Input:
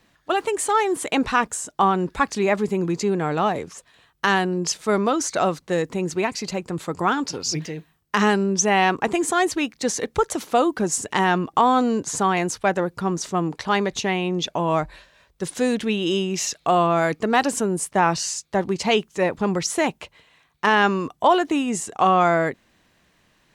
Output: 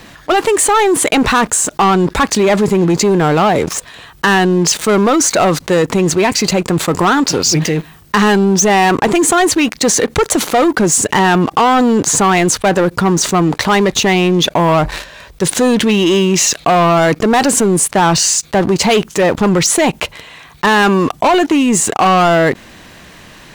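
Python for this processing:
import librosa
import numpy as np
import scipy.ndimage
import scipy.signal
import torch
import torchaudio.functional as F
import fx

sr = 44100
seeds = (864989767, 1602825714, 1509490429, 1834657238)

y = fx.leveller(x, sr, passes=3)
y = fx.dynamic_eq(y, sr, hz=5300.0, q=7.6, threshold_db=-38.0, ratio=4.0, max_db=-4)
y = fx.env_flatten(y, sr, amount_pct=50)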